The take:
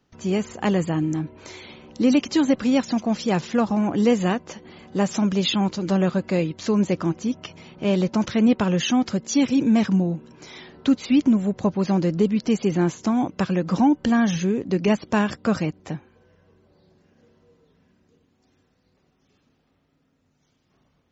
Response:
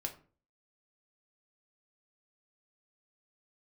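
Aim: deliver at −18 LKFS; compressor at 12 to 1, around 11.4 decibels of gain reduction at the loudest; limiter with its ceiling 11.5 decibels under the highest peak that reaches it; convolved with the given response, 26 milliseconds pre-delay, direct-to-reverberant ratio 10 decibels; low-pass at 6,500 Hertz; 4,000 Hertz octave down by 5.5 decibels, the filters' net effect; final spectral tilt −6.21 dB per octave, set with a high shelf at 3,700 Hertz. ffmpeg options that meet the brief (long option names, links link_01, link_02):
-filter_complex "[0:a]lowpass=6500,highshelf=frequency=3700:gain=-5.5,equalizer=frequency=4000:width_type=o:gain=-3.5,acompressor=threshold=-25dB:ratio=12,alimiter=level_in=1.5dB:limit=-24dB:level=0:latency=1,volume=-1.5dB,asplit=2[link_01][link_02];[1:a]atrim=start_sample=2205,adelay=26[link_03];[link_02][link_03]afir=irnorm=-1:irlink=0,volume=-9.5dB[link_04];[link_01][link_04]amix=inputs=2:normalize=0,volume=15.5dB"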